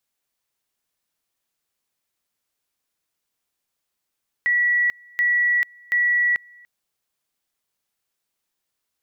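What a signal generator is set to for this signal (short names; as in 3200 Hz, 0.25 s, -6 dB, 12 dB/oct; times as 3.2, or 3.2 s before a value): two-level tone 1940 Hz -16 dBFS, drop 29 dB, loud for 0.44 s, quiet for 0.29 s, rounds 3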